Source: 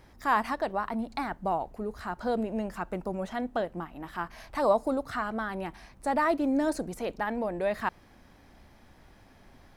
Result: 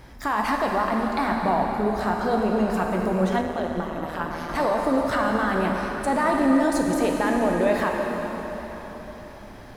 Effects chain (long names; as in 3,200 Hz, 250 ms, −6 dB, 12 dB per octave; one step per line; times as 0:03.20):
brickwall limiter −24.5 dBFS, peak gain reduction 12 dB
dense smooth reverb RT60 4.6 s, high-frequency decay 0.85×, DRR −0.5 dB
0:03.41–0:04.49: amplitude modulation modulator 160 Hz, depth 55%
level +8.5 dB